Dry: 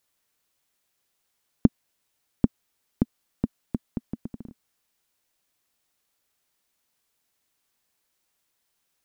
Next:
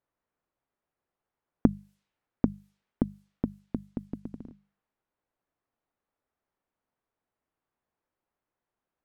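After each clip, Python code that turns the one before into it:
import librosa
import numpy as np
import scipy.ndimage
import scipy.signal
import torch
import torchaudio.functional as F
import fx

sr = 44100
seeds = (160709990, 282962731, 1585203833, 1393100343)

y = fx.env_lowpass(x, sr, base_hz=1200.0, full_db=-31.0)
y = fx.hum_notches(y, sr, base_hz=50, count=4)
y = F.gain(torch.from_numpy(y), -2.0).numpy()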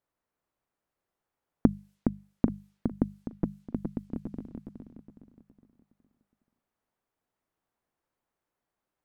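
y = fx.echo_feedback(x, sr, ms=415, feedback_pct=40, wet_db=-5.5)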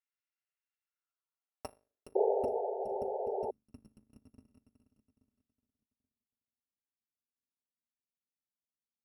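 y = fx.bit_reversed(x, sr, seeds[0], block=256)
y = fx.spec_paint(y, sr, seeds[1], shape='noise', start_s=2.15, length_s=1.36, low_hz=380.0, high_hz=910.0, level_db=-21.0)
y = fx.filter_sweep_bandpass(y, sr, from_hz=1900.0, to_hz=220.0, start_s=0.76, end_s=2.69, q=2.5)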